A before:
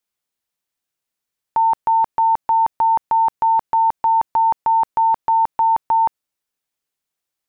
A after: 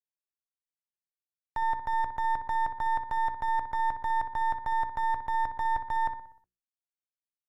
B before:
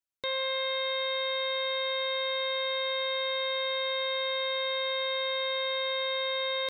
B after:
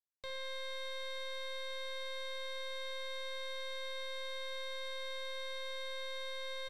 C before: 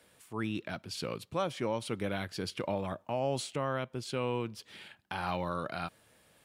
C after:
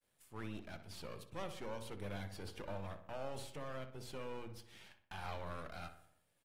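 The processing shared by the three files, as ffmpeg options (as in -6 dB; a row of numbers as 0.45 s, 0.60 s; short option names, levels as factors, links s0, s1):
-filter_complex "[0:a]aeval=exprs='if(lt(val(0),0),0.251*val(0),val(0))':c=same,highshelf=f=7700:g=6,bandreject=f=60:t=h:w=6,bandreject=f=120:t=h:w=6,bandreject=f=180:t=h:w=6,bandreject=f=240:t=h:w=6,bandreject=f=300:t=h:w=6,bandreject=f=360:t=h:w=6,bandreject=f=420:t=h:w=6,bandreject=f=480:t=h:w=6,agate=range=0.0224:threshold=0.00126:ratio=3:detection=peak,acrossover=split=3100[s0][s1];[s1]acompressor=threshold=0.00708:ratio=4:attack=1:release=60[s2];[s0][s2]amix=inputs=2:normalize=0,equalizer=f=94:t=o:w=1.1:g=5.5,alimiter=limit=0.188:level=0:latency=1:release=33,acrossover=split=490[s3][s4];[s3]acompressor=threshold=0.0501:ratio=4[s5];[s5][s4]amix=inputs=2:normalize=0,asplit=2[s6][s7];[s7]adelay=61,lowpass=f=2700:p=1,volume=0.316,asplit=2[s8][s9];[s9]adelay=61,lowpass=f=2700:p=1,volume=0.54,asplit=2[s10][s11];[s11]adelay=61,lowpass=f=2700:p=1,volume=0.54,asplit=2[s12][s13];[s13]adelay=61,lowpass=f=2700:p=1,volume=0.54,asplit=2[s14][s15];[s15]adelay=61,lowpass=f=2700:p=1,volume=0.54,asplit=2[s16][s17];[s17]adelay=61,lowpass=f=2700:p=1,volume=0.54[s18];[s8][s10][s12][s14][s16][s18]amix=inputs=6:normalize=0[s19];[s6][s19]amix=inputs=2:normalize=0,volume=0.398" -ar 48000 -c:a aac -b:a 48k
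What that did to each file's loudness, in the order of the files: -12.5 LU, -12.5 LU, -11.5 LU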